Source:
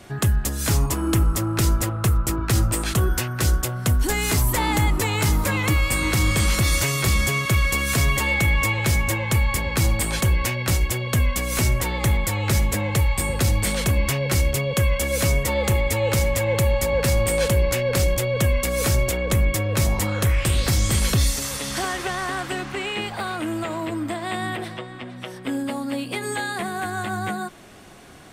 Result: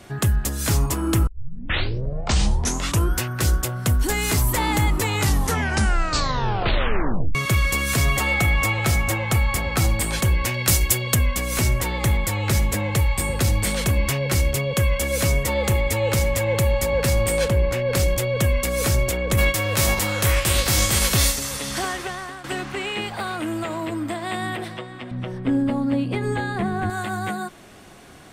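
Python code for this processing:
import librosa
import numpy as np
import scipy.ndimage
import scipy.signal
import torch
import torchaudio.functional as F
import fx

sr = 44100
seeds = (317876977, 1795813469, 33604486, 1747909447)

y = fx.small_body(x, sr, hz=(730.0, 1300.0), ring_ms=45, db=11, at=(8.05, 9.87))
y = fx.high_shelf(y, sr, hz=4200.0, db=11.0, at=(10.54, 11.15))
y = fx.high_shelf(y, sr, hz=4000.0, db=-11.0, at=(17.44, 17.88), fade=0.02)
y = fx.envelope_flatten(y, sr, power=0.6, at=(19.37, 21.34), fade=0.02)
y = fx.riaa(y, sr, side='playback', at=(25.11, 26.9))
y = fx.edit(y, sr, fx.tape_start(start_s=1.27, length_s=1.9),
    fx.tape_stop(start_s=5.13, length_s=2.22),
    fx.fade_out_to(start_s=21.86, length_s=0.58, floor_db=-13.0), tone=tone)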